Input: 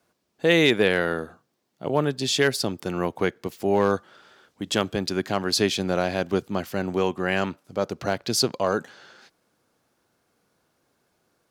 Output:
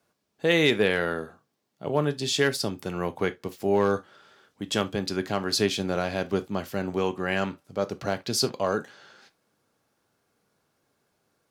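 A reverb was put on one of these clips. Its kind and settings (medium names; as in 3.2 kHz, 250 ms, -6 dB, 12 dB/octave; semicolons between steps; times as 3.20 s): gated-style reverb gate 90 ms falling, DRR 10 dB; trim -3 dB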